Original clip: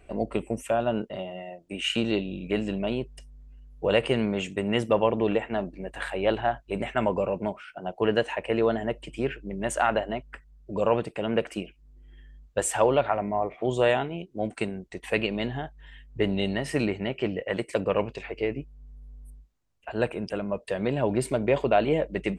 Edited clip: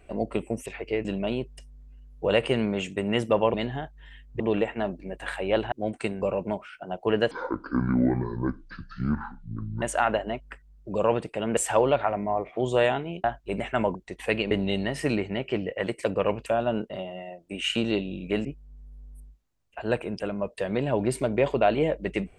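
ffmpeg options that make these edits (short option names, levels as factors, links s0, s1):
-filter_complex "[0:a]asplit=15[s0][s1][s2][s3][s4][s5][s6][s7][s8][s9][s10][s11][s12][s13][s14];[s0]atrim=end=0.662[s15];[s1]atrim=start=18.158:end=18.552[s16];[s2]atrim=start=2.648:end=5.142[s17];[s3]atrim=start=15.348:end=16.212[s18];[s4]atrim=start=5.138:end=6.462[s19];[s5]atrim=start=14.288:end=14.792[s20];[s6]atrim=start=7.168:end=8.264[s21];[s7]atrim=start=8.26:end=9.64,asetpts=PTS-STARTPTS,asetrate=24255,aresample=44100[s22];[s8]atrim=start=9.636:end=11.392[s23];[s9]atrim=start=12.618:end=14.292[s24];[s10]atrim=start=6.458:end=7.172[s25];[s11]atrim=start=14.788:end=15.352[s26];[s12]atrim=start=16.208:end=18.162[s27];[s13]atrim=start=0.658:end=2.652[s28];[s14]atrim=start=18.548[s29];[s15][s16]acrossfade=d=0.004:c1=hsin:c2=hsin[s30];[s30][s17]acrossfade=d=0.004:c1=hsin:c2=hsin[s31];[s31][s18]acrossfade=d=0.004:c1=hsin:c2=hsin[s32];[s32][s19]acrossfade=d=0.004:c1=hsin:c2=hsin[s33];[s33][s20]acrossfade=d=0.004:c1=hsin:c2=hsin[s34];[s34][s21]acrossfade=d=0.004:c1=hsin:c2=hsin[s35];[s35][s22]acrossfade=d=0.004:c1=hsin:c2=hsin[s36];[s36][s23]acrossfade=d=0.004:c1=hsin:c2=hsin[s37];[s37][s24]acrossfade=d=0.004:c1=hsin:c2=hsin[s38];[s38][s25]acrossfade=d=0.004:c1=hsin:c2=hsin[s39];[s39][s26]acrossfade=d=0.004:c1=hsin:c2=hsin[s40];[s40][s27]acrossfade=d=0.004:c1=hsin:c2=hsin[s41];[s41][s28]acrossfade=d=0.004:c1=hsin:c2=hsin[s42];[s42][s29]acrossfade=d=0.004:c1=hsin:c2=hsin"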